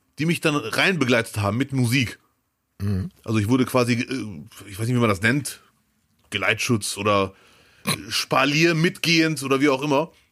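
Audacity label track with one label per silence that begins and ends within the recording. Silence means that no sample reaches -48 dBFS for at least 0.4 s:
2.160000	2.800000	silence
5.680000	6.190000	silence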